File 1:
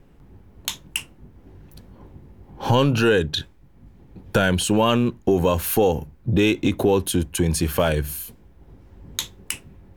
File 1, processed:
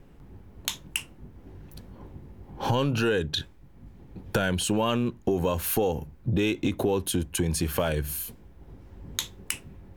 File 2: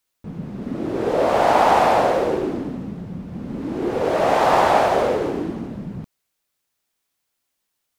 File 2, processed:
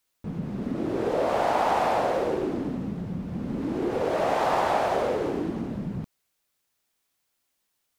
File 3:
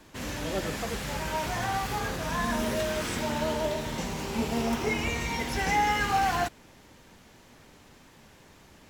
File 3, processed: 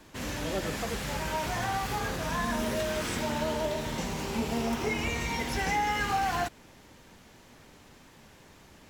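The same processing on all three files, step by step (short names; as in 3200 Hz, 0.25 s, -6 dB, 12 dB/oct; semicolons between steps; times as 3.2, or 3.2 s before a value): compressor 2:1, threshold -27 dBFS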